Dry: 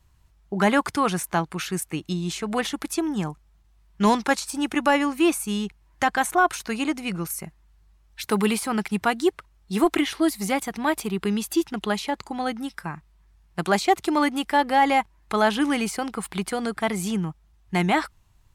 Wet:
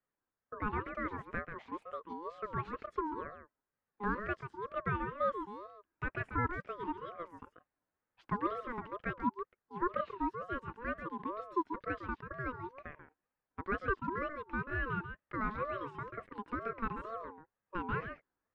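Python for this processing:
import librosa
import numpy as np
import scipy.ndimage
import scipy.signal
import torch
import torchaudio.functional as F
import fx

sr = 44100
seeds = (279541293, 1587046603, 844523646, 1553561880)

p1 = fx.ladder_bandpass(x, sr, hz=510.0, resonance_pct=25)
p2 = p1 + fx.echo_single(p1, sr, ms=138, db=-8.5, dry=0)
p3 = fx.rider(p2, sr, range_db=3, speed_s=2.0)
p4 = fx.ring_lfo(p3, sr, carrier_hz=760.0, swing_pct=20, hz=2.1)
y = p4 * librosa.db_to_amplitude(1.0)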